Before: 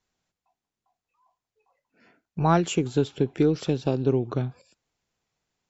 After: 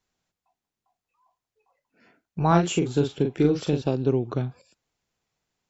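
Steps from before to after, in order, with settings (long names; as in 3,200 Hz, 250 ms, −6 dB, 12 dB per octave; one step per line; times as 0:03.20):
0:02.47–0:03.82: double-tracking delay 41 ms −5.5 dB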